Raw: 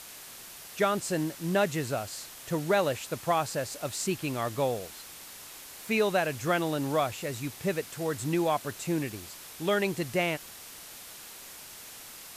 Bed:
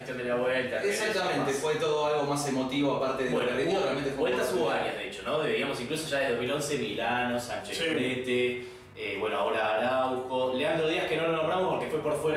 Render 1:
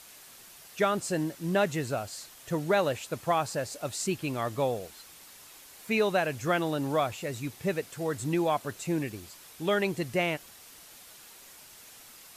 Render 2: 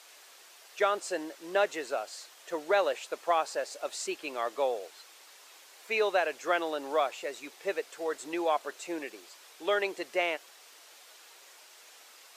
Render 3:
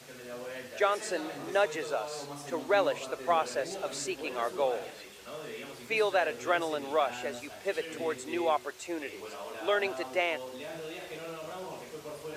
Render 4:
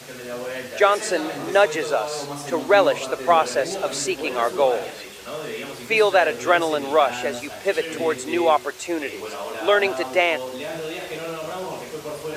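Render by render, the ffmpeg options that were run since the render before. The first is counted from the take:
-af "afftdn=nr=6:nf=-46"
-af "highpass=f=390:w=0.5412,highpass=f=390:w=1.3066,equalizer=f=12000:t=o:w=0.87:g=-10.5"
-filter_complex "[1:a]volume=0.211[s0];[0:a][s0]amix=inputs=2:normalize=0"
-af "volume=3.35"

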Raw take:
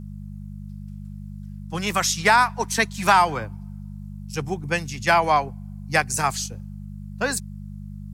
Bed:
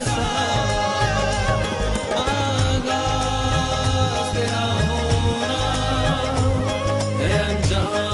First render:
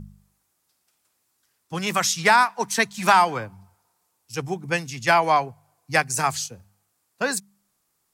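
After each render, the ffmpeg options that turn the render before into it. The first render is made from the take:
-af "bandreject=f=50:t=h:w=4,bandreject=f=100:t=h:w=4,bandreject=f=150:t=h:w=4,bandreject=f=200:t=h:w=4"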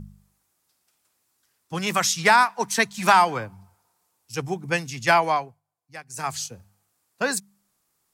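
-filter_complex "[0:a]asplit=3[s0][s1][s2];[s0]atrim=end=5.61,asetpts=PTS-STARTPTS,afade=t=out:st=5.16:d=0.45:silence=0.105925[s3];[s1]atrim=start=5.61:end=6.06,asetpts=PTS-STARTPTS,volume=0.106[s4];[s2]atrim=start=6.06,asetpts=PTS-STARTPTS,afade=t=in:d=0.45:silence=0.105925[s5];[s3][s4][s5]concat=n=3:v=0:a=1"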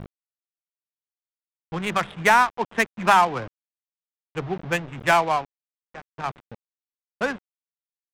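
-af "aresample=8000,acrusher=bits=5:mix=0:aa=0.000001,aresample=44100,adynamicsmooth=sensitivity=2.5:basefreq=740"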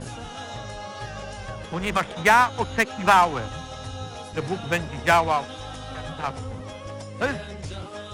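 -filter_complex "[1:a]volume=0.178[s0];[0:a][s0]amix=inputs=2:normalize=0"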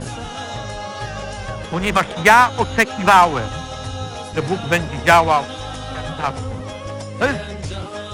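-af "volume=2.24,alimiter=limit=0.891:level=0:latency=1"

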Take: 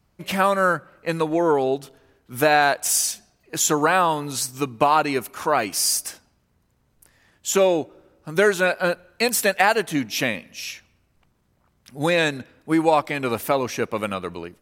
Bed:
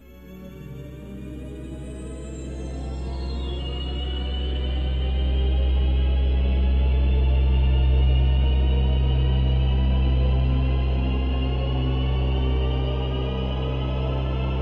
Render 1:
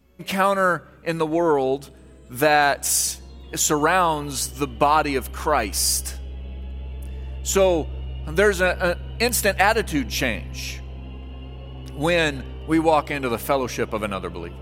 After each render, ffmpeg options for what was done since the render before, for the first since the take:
-filter_complex "[1:a]volume=0.224[s0];[0:a][s0]amix=inputs=2:normalize=0"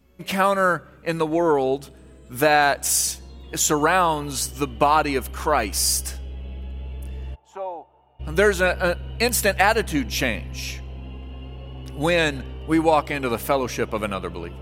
-filter_complex "[0:a]asplit=3[s0][s1][s2];[s0]afade=t=out:st=7.34:d=0.02[s3];[s1]bandpass=f=850:t=q:w=5.9,afade=t=in:st=7.34:d=0.02,afade=t=out:st=8.19:d=0.02[s4];[s2]afade=t=in:st=8.19:d=0.02[s5];[s3][s4][s5]amix=inputs=3:normalize=0"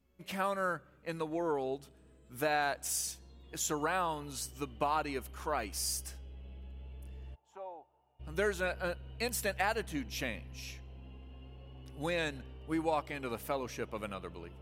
-af "volume=0.188"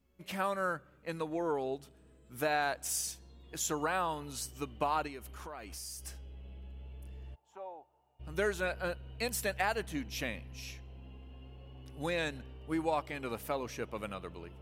-filter_complex "[0:a]asettb=1/sr,asplit=3[s0][s1][s2];[s0]atrim=end=5.074[s3];[s1]atrim=start=5.07:end=6.05,asetpts=PTS-STARTPTS,afade=t=in:d=0.004:c=qsin,afade=t=out:st=0.976:d=0.004:c=qsin,acompressor=threshold=0.00794:ratio=4:attack=3.2:release=140:knee=1:detection=peak[s4];[s2]atrim=start=6.046[s5];[s3][s4]acrossfade=d=0.004:c1=hsin:c2=qsin[s6];[s6][s5]acrossfade=d=0.004:c1=qsin:c2=hsin"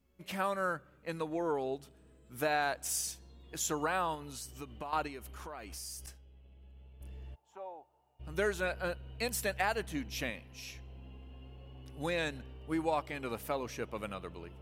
-filter_complex "[0:a]asettb=1/sr,asplit=3[s0][s1][s2];[s0]atrim=end=4.154[s3];[s1]atrim=start=4.15:end=4.93,asetpts=PTS-STARTPTS,afade=t=in:d=0.004:c=qsin,afade=t=out:st=0.776:d=0.004:c=qsin,acompressor=threshold=0.00794:ratio=2.5:attack=3.2:release=140:knee=1:detection=peak[s4];[s2]atrim=start=4.926[s5];[s3][s4]acrossfade=d=0.004:c1=hsin:c2=qsin[s6];[s6][s5]acrossfade=d=0.004:c1=qsin:c2=hsin,asettb=1/sr,asplit=3[s7][s8][s9];[s7]atrim=end=6.064[s10];[s8]atrim=start=6.06:end=7.01,asetpts=PTS-STARTPTS,afade=t=in:d=0.004:c=qsin,afade=t=out:st=0.946:d=0.004:c=qsin,agate=range=0.0224:threshold=0.00891:ratio=3:release=100:detection=peak[s11];[s9]atrim=start=7.006[s12];[s10][s11]acrossfade=d=0.004:c1=hsin:c2=qsin[s13];[s13][s12]acrossfade=d=0.004:c1=qsin:c2=hsin,asettb=1/sr,asplit=3[s14][s15][s16];[s14]atrim=end=10.304[s17];[s15]atrim=start=10.3:end=10.75,asetpts=PTS-STARTPTS,afade=t=in:d=0.004:c=qsin,afade=t=out:st=0.446:d=0.004:c=qsin,lowshelf=f=160:g=-9[s18];[s16]atrim=start=10.746[s19];[s17][s18]acrossfade=d=0.004:c1=hsin:c2=qsin[s20];[s20][s19]acrossfade=d=0.004:c1=qsin:c2=hsin"

